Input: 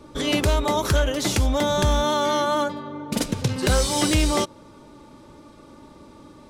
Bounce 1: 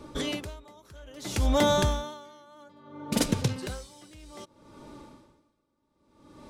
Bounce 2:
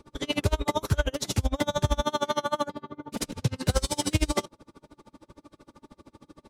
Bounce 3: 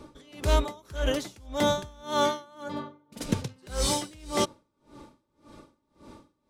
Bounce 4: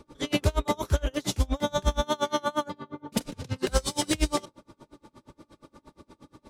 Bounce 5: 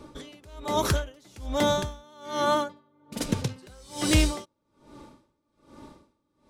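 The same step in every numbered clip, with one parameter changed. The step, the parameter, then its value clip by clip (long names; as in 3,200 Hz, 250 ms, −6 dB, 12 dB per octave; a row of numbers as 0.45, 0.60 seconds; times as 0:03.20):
tremolo with a sine in dB, speed: 0.61, 13, 1.8, 8.5, 1.2 Hertz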